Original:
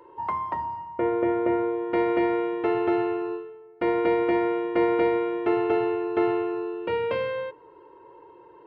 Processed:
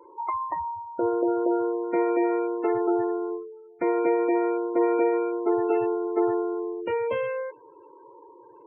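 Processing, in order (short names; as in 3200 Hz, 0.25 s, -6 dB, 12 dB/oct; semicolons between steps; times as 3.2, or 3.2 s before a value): notches 50/100 Hz; spectral gate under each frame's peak -20 dB strong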